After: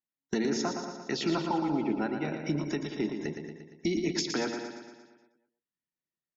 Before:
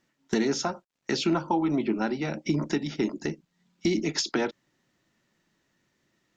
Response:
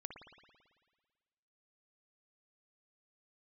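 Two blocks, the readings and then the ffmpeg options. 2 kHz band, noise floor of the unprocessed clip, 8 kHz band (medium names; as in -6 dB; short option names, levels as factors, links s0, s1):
-3.5 dB, -76 dBFS, no reading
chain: -filter_complex "[0:a]asplit=2[s0][s1];[s1]aecho=0:1:187|315:0.299|0.106[s2];[s0][s2]amix=inputs=2:normalize=0,afftdn=nr=25:nf=-43,asplit=2[s3][s4];[s4]aecho=0:1:116|232|348|464|580|696|812:0.447|0.255|0.145|0.0827|0.0472|0.0269|0.0153[s5];[s3][s5]amix=inputs=2:normalize=0,volume=0.596"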